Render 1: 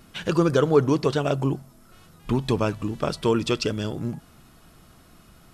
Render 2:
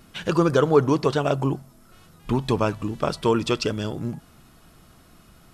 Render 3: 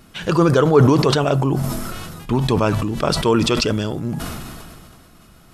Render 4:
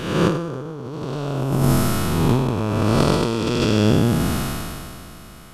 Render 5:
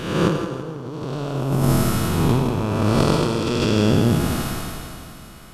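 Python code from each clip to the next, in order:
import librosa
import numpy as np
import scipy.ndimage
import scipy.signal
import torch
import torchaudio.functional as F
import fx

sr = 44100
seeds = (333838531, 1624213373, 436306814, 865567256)

y1 = fx.dynamic_eq(x, sr, hz=950.0, q=1.1, threshold_db=-35.0, ratio=4.0, max_db=4)
y2 = fx.sustainer(y1, sr, db_per_s=26.0)
y2 = y2 * 10.0 ** (3.0 / 20.0)
y3 = fx.spec_blur(y2, sr, span_ms=400.0)
y3 = fx.over_compress(y3, sr, threshold_db=-24.0, ratio=-0.5)
y3 = y3 * 10.0 ** (5.5 / 20.0)
y4 = fx.echo_feedback(y3, sr, ms=164, feedback_pct=39, wet_db=-9.0)
y4 = y4 * 10.0 ** (-1.0 / 20.0)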